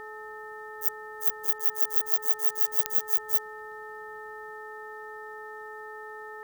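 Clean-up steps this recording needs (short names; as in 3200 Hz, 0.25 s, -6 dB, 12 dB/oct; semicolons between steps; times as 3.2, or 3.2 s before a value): de-click; de-hum 429.6 Hz, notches 3; notch 1800 Hz, Q 30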